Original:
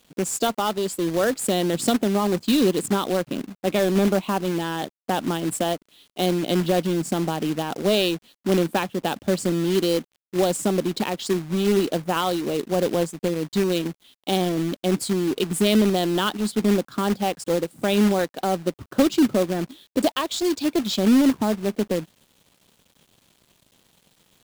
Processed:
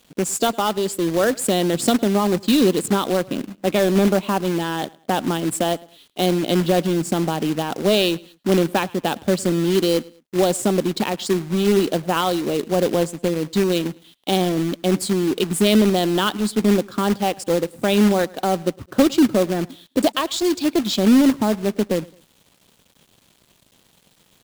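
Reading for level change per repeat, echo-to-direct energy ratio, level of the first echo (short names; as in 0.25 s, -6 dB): -9.0 dB, -23.0 dB, -23.5 dB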